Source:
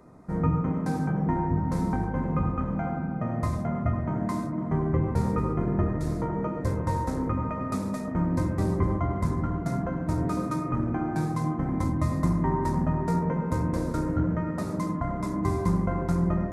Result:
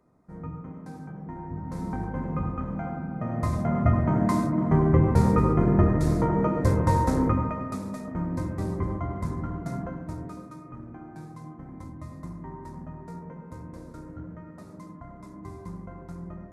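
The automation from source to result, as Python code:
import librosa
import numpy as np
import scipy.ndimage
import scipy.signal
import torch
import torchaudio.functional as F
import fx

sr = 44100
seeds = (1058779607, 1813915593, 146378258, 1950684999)

y = fx.gain(x, sr, db=fx.line((1.28, -13.0), (2.05, -3.0), (3.09, -3.0), (3.9, 5.5), (7.26, 5.5), (7.76, -4.0), (9.84, -4.0), (10.5, -14.5)))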